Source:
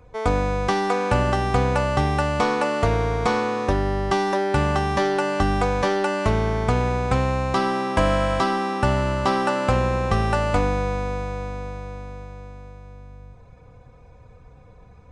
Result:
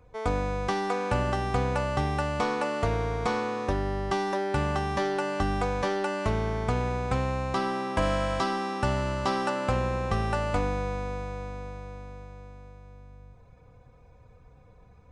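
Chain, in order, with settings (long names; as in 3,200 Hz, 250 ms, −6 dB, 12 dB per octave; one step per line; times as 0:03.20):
0:08.02–0:09.50: parametric band 5,600 Hz +3.5 dB 1.4 octaves
level −6.5 dB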